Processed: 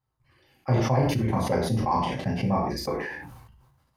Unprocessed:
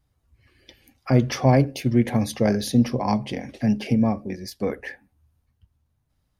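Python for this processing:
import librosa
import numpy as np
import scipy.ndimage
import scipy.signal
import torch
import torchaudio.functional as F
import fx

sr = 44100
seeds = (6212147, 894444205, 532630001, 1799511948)

y = scipy.signal.sosfilt(scipy.signal.butter(2, 71.0, 'highpass', fs=sr, output='sos'), x)
y = fx.peak_eq(y, sr, hz=990.0, db=11.5, octaves=1.2)
y = fx.level_steps(y, sr, step_db=20)
y = fx.stretch_grains(y, sr, factor=0.62, grain_ms=24.0)
y = fx.doubler(y, sr, ms=35.0, db=-5.5)
y = fx.rev_gated(y, sr, seeds[0], gate_ms=150, shape='falling', drr_db=-1.5)
y = fx.sustainer(y, sr, db_per_s=43.0)
y = y * 10.0 ** (-6.0 / 20.0)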